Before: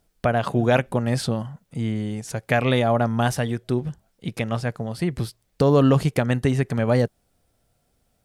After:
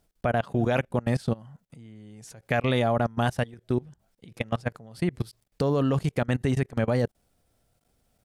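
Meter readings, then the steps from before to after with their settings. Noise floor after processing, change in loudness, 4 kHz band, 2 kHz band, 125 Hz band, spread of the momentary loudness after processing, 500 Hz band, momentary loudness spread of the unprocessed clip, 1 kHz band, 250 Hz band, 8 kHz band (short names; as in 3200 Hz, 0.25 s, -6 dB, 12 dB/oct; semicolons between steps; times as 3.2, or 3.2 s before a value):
-73 dBFS, -4.5 dB, -5.5 dB, -4.5 dB, -5.0 dB, 13 LU, -5.0 dB, 11 LU, -4.5 dB, -5.5 dB, -10.0 dB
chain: level quantiser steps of 23 dB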